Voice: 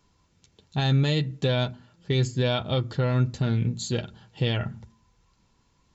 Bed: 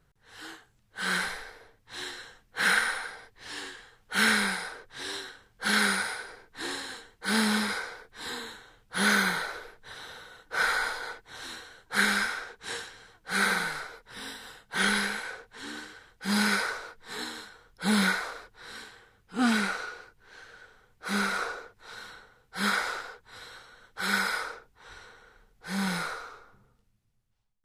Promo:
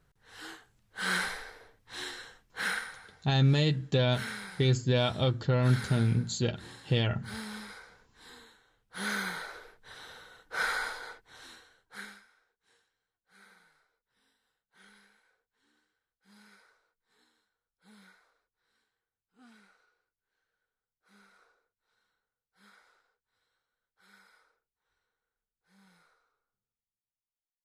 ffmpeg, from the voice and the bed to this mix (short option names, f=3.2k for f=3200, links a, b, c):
-filter_complex "[0:a]adelay=2500,volume=-2dB[a];[1:a]volume=9.5dB,afade=t=out:st=2.27:d=0.63:silence=0.199526,afade=t=in:st=8.56:d=1.48:silence=0.281838,afade=t=out:st=10.78:d=1.44:silence=0.0354813[b];[a][b]amix=inputs=2:normalize=0"